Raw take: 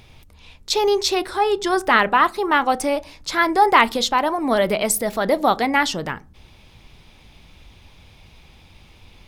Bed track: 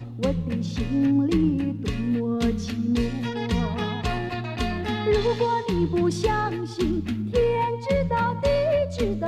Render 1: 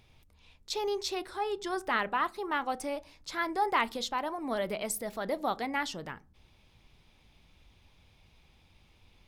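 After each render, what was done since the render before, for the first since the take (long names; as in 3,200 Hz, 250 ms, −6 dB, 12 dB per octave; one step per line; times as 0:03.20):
level −14 dB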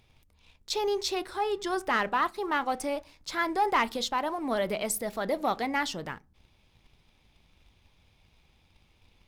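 leveller curve on the samples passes 1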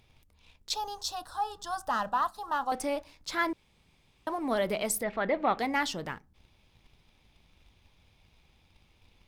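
0:00.74–0:02.72: phaser with its sweep stopped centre 910 Hz, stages 4
0:03.53–0:04.27: fill with room tone
0:05.03–0:05.59: low-pass with resonance 2,300 Hz, resonance Q 2.1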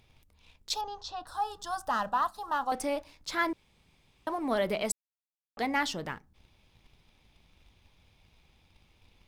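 0:00.81–0:01.27: high-frequency loss of the air 180 metres
0:04.92–0:05.57: silence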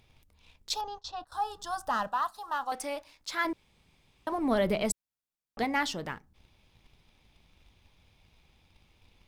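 0:00.80–0:01.32: noise gate −47 dBFS, range −18 dB
0:02.07–0:03.45: low-shelf EQ 470 Hz −10.5 dB
0:04.32–0:05.64: low-shelf EQ 240 Hz +10 dB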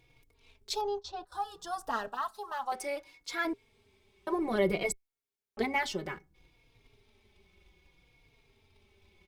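hollow resonant body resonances 400/2,200 Hz, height 15 dB, ringing for 70 ms
barber-pole flanger 3.7 ms −0.62 Hz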